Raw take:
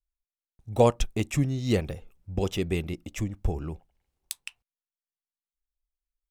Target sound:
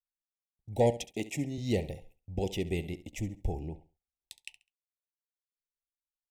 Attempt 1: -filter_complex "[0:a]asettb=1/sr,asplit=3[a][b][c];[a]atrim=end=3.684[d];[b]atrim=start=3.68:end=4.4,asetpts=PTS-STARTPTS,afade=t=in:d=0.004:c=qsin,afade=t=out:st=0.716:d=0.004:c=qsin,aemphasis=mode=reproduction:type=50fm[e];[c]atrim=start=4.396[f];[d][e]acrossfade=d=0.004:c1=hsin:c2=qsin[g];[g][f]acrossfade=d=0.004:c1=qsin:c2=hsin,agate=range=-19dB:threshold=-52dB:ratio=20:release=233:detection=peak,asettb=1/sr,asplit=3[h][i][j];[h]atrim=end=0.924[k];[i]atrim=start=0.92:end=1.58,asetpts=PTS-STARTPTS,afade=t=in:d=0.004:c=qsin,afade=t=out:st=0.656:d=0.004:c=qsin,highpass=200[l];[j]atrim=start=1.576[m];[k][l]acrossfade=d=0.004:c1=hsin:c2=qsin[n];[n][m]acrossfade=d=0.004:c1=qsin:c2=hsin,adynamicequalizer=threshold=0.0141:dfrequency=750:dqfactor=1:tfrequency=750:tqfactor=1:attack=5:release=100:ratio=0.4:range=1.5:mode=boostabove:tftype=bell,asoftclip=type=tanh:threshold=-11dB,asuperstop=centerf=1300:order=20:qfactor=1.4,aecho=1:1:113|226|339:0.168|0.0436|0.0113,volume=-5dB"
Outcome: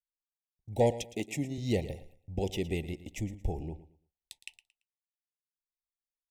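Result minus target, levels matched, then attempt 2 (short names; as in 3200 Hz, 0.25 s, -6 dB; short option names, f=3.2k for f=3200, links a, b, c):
echo 45 ms late
-filter_complex "[0:a]asettb=1/sr,asplit=3[a][b][c];[a]atrim=end=3.684[d];[b]atrim=start=3.68:end=4.4,asetpts=PTS-STARTPTS,afade=t=in:d=0.004:c=qsin,afade=t=out:st=0.716:d=0.004:c=qsin,aemphasis=mode=reproduction:type=50fm[e];[c]atrim=start=4.396[f];[d][e]acrossfade=d=0.004:c1=hsin:c2=qsin[g];[g][f]acrossfade=d=0.004:c1=qsin:c2=hsin,agate=range=-19dB:threshold=-52dB:ratio=20:release=233:detection=peak,asettb=1/sr,asplit=3[h][i][j];[h]atrim=end=0.924[k];[i]atrim=start=0.92:end=1.58,asetpts=PTS-STARTPTS,afade=t=in:d=0.004:c=qsin,afade=t=out:st=0.656:d=0.004:c=qsin,highpass=200[l];[j]atrim=start=1.576[m];[k][l]acrossfade=d=0.004:c1=hsin:c2=qsin[n];[n][m]acrossfade=d=0.004:c1=qsin:c2=hsin,adynamicequalizer=threshold=0.0141:dfrequency=750:dqfactor=1:tfrequency=750:tqfactor=1:attack=5:release=100:ratio=0.4:range=1.5:mode=boostabove:tftype=bell,asoftclip=type=tanh:threshold=-11dB,asuperstop=centerf=1300:order=20:qfactor=1.4,aecho=1:1:68|136|204:0.168|0.0436|0.0113,volume=-5dB"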